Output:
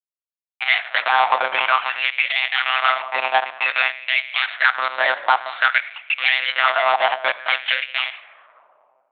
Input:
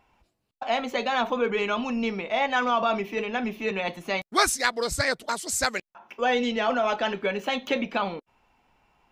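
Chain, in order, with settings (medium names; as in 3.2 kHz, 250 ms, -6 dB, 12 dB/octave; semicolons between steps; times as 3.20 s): coarse spectral quantiser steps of 15 dB; resonant low shelf 460 Hz -8.5 dB, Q 3; de-hum 54.41 Hz, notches 17; in parallel at +2 dB: compression, threshold -35 dBFS, peak gain reduction 18.5 dB; on the sum: transient shaper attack +3 dB, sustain -11 dB; fuzz box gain 31 dB, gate -36 dBFS; on a send at -10 dB: reverberation RT60 1.6 s, pre-delay 5 ms; on the sum: monotone LPC vocoder at 8 kHz 130 Hz; LFO high-pass sine 0.53 Hz 870–2400 Hz; tape noise reduction on one side only decoder only; trim -2 dB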